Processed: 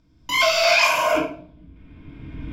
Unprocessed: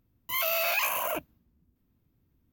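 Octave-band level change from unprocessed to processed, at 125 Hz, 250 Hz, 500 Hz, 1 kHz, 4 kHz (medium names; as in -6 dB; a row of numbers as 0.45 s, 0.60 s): +19.0 dB, +16.5 dB, +13.0 dB, +11.5 dB, +13.5 dB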